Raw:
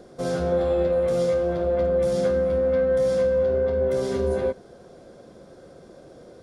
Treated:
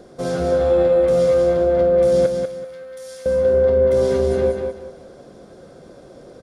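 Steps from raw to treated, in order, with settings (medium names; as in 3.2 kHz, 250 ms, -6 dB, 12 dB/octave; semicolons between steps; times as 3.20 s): 2.26–3.26 s: pre-emphasis filter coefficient 0.97; feedback delay 192 ms, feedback 28%, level -5 dB; trim +3 dB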